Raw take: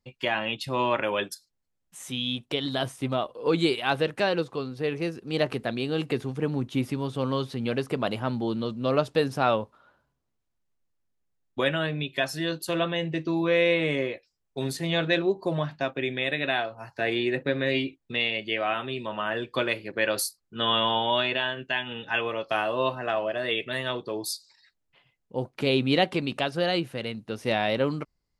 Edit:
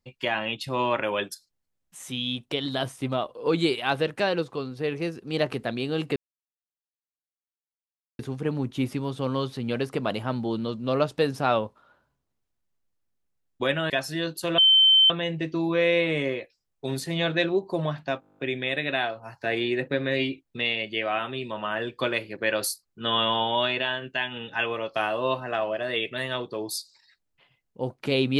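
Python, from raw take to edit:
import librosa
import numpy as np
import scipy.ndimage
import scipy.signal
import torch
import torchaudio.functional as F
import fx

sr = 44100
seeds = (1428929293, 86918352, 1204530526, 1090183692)

y = fx.edit(x, sr, fx.insert_silence(at_s=6.16, length_s=2.03),
    fx.cut(start_s=11.87, length_s=0.28),
    fx.insert_tone(at_s=12.83, length_s=0.52, hz=3090.0, db=-13.5),
    fx.stutter(start_s=15.93, slice_s=0.02, count=10), tone=tone)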